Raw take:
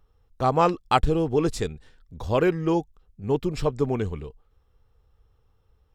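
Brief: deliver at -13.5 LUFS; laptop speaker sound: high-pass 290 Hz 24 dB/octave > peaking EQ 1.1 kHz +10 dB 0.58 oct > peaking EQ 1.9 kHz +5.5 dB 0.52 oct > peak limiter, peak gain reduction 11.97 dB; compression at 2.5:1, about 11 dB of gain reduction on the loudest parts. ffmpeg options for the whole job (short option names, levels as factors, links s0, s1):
-af "acompressor=threshold=0.0282:ratio=2.5,highpass=f=290:w=0.5412,highpass=f=290:w=1.3066,equalizer=f=1100:t=o:w=0.58:g=10,equalizer=f=1900:t=o:w=0.52:g=5.5,volume=13.3,alimiter=limit=1:level=0:latency=1"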